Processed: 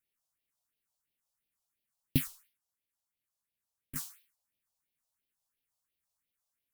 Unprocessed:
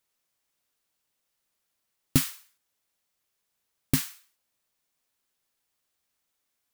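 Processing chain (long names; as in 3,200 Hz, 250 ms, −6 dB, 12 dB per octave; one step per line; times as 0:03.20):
0:02.27–0:03.96: tube saturation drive 33 dB, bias 0.6
all-pass phaser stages 4, 2.9 Hz, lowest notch 300–1,300 Hz
level −6 dB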